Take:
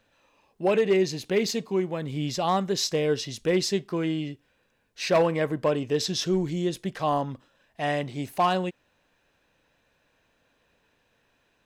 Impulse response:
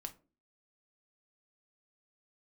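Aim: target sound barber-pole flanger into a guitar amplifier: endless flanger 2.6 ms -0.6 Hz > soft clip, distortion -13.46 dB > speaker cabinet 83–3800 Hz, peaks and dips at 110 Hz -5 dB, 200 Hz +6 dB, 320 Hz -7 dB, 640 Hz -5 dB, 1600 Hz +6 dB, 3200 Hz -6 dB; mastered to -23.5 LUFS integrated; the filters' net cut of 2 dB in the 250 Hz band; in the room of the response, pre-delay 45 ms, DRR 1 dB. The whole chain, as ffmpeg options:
-filter_complex "[0:a]equalizer=f=250:t=o:g=-4,asplit=2[a][b];[1:a]atrim=start_sample=2205,adelay=45[c];[b][c]afir=irnorm=-1:irlink=0,volume=2.5dB[d];[a][d]amix=inputs=2:normalize=0,asplit=2[e][f];[f]adelay=2.6,afreqshift=-0.6[g];[e][g]amix=inputs=2:normalize=1,asoftclip=threshold=-22dB,highpass=83,equalizer=f=110:t=q:w=4:g=-5,equalizer=f=200:t=q:w=4:g=6,equalizer=f=320:t=q:w=4:g=-7,equalizer=f=640:t=q:w=4:g=-5,equalizer=f=1.6k:t=q:w=4:g=6,equalizer=f=3.2k:t=q:w=4:g=-6,lowpass=f=3.8k:w=0.5412,lowpass=f=3.8k:w=1.3066,volume=8.5dB"

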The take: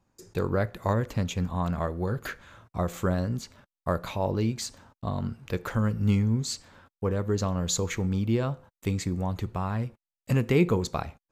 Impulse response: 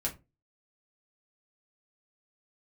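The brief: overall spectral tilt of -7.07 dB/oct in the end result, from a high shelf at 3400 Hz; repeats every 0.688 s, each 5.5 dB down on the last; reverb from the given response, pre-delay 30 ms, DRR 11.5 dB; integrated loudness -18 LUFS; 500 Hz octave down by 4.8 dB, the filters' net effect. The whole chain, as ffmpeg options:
-filter_complex "[0:a]equalizer=f=500:t=o:g=-6,highshelf=f=3.4k:g=-5.5,aecho=1:1:688|1376|2064|2752|3440|4128|4816:0.531|0.281|0.149|0.079|0.0419|0.0222|0.0118,asplit=2[a][b];[1:a]atrim=start_sample=2205,adelay=30[c];[b][c]afir=irnorm=-1:irlink=0,volume=-15dB[d];[a][d]amix=inputs=2:normalize=0,volume=11dB"

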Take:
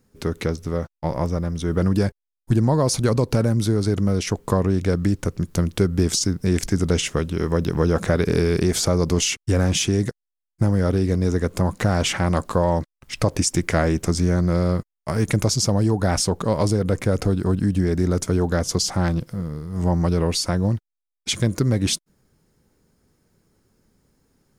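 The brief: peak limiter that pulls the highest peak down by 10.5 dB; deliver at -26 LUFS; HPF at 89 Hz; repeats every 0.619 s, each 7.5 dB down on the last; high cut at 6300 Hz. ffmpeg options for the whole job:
-af "highpass=89,lowpass=6.3k,alimiter=limit=-14.5dB:level=0:latency=1,aecho=1:1:619|1238|1857|2476|3095:0.422|0.177|0.0744|0.0312|0.0131,volume=-0.5dB"

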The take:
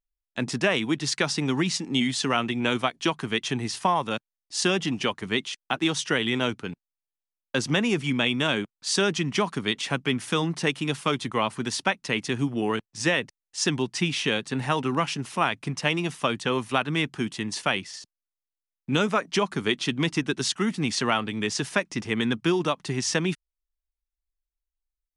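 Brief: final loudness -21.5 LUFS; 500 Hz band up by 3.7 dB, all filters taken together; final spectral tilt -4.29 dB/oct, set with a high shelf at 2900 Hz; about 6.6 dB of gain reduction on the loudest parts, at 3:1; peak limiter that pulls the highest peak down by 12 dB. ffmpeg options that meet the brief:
-af "equalizer=f=500:t=o:g=5,highshelf=f=2.9k:g=-4,acompressor=threshold=-26dB:ratio=3,volume=12dB,alimiter=limit=-11dB:level=0:latency=1"

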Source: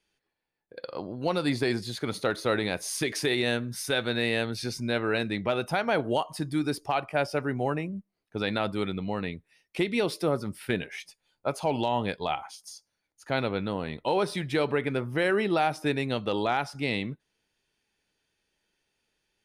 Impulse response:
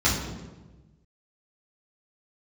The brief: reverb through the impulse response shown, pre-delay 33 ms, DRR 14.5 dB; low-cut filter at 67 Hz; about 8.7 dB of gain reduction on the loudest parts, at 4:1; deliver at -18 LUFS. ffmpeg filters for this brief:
-filter_complex "[0:a]highpass=67,acompressor=threshold=-32dB:ratio=4,asplit=2[a][b];[1:a]atrim=start_sample=2205,adelay=33[c];[b][c]afir=irnorm=-1:irlink=0,volume=-30dB[d];[a][d]amix=inputs=2:normalize=0,volume=18dB"

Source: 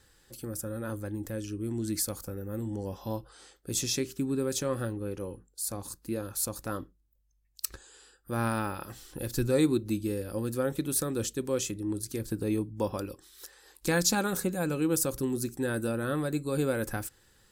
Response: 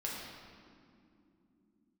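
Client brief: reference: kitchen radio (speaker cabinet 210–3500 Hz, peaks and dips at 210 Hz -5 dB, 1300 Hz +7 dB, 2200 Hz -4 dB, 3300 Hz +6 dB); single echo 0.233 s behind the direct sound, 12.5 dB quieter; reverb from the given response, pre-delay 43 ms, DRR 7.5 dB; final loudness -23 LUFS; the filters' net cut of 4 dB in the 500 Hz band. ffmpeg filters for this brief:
-filter_complex "[0:a]equalizer=f=500:t=o:g=-4.5,aecho=1:1:233:0.237,asplit=2[a][b];[1:a]atrim=start_sample=2205,adelay=43[c];[b][c]afir=irnorm=-1:irlink=0,volume=-10dB[d];[a][d]amix=inputs=2:normalize=0,highpass=210,equalizer=f=210:t=q:w=4:g=-5,equalizer=f=1.3k:t=q:w=4:g=7,equalizer=f=2.2k:t=q:w=4:g=-4,equalizer=f=3.3k:t=q:w=4:g=6,lowpass=f=3.5k:w=0.5412,lowpass=f=3.5k:w=1.3066,volume=11.5dB"

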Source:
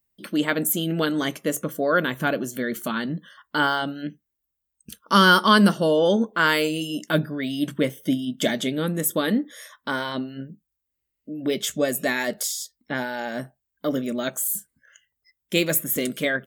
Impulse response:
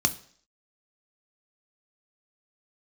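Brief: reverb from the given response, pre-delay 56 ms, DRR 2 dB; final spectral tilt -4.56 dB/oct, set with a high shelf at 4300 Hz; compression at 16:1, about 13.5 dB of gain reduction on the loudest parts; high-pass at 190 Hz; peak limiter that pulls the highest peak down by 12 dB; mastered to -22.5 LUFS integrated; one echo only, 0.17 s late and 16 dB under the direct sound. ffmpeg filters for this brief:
-filter_complex "[0:a]highpass=190,highshelf=f=4.3k:g=-7.5,acompressor=threshold=-25dB:ratio=16,alimiter=level_in=1dB:limit=-24dB:level=0:latency=1,volume=-1dB,aecho=1:1:170:0.158,asplit=2[a][b];[1:a]atrim=start_sample=2205,adelay=56[c];[b][c]afir=irnorm=-1:irlink=0,volume=-11.5dB[d];[a][d]amix=inputs=2:normalize=0,volume=9.5dB"

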